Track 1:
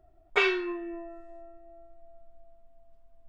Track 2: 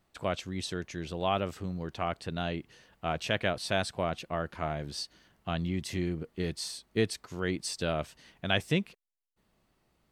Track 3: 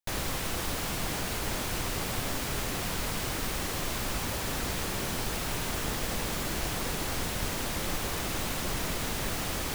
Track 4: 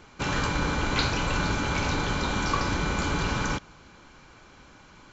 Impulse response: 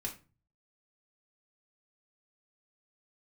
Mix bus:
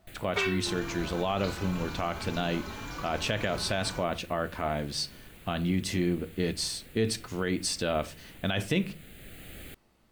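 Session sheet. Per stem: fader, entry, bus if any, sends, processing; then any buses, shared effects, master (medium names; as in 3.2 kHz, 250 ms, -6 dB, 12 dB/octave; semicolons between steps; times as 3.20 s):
-4.5 dB, 0.00 s, no send, none
+3.0 dB, 0.00 s, send -7 dB, none
-10.0 dB, 0.00 s, no send, static phaser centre 2.4 kHz, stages 4; auto duck -7 dB, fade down 0.25 s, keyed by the second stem
-9.5 dB, 0.45 s, no send, endless flanger 3.7 ms +2 Hz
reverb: on, RT60 0.35 s, pre-delay 3 ms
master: peak limiter -17.5 dBFS, peak gain reduction 11 dB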